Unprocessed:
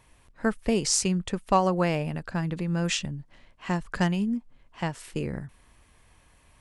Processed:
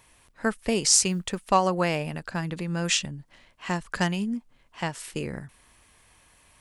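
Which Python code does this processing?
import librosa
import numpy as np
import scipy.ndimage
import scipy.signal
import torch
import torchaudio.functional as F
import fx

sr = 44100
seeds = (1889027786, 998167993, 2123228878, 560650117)

y = fx.tilt_eq(x, sr, slope=1.5)
y = fx.quant_companded(y, sr, bits=8, at=(1.07, 1.47))
y = F.gain(torch.from_numpy(y), 1.5).numpy()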